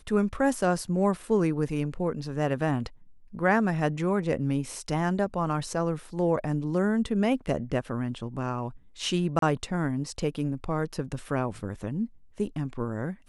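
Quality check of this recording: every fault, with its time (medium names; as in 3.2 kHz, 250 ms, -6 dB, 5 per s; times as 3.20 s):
9.39–9.42 s: dropout 33 ms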